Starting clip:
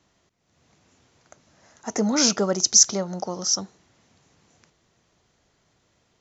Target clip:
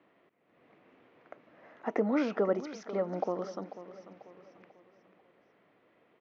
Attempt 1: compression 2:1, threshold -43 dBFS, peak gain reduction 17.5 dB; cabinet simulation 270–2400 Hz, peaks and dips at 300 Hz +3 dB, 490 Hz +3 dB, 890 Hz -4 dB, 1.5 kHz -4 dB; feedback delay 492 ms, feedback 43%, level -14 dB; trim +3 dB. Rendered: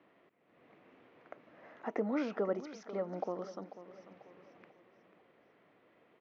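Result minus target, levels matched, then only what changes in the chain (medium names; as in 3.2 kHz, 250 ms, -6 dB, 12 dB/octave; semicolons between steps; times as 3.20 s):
compression: peak gain reduction +5 dB
change: compression 2:1, threshold -32.5 dBFS, peak gain reduction 12.5 dB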